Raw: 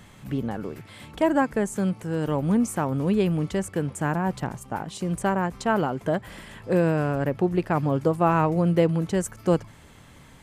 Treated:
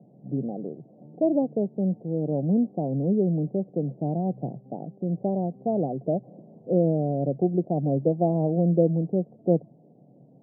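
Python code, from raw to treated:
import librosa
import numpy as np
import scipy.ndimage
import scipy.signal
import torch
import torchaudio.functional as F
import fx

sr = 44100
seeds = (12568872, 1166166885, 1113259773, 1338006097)

y = scipy.signal.sosfilt(scipy.signal.cheby1(5, 1.0, [130.0, 730.0], 'bandpass', fs=sr, output='sos'), x)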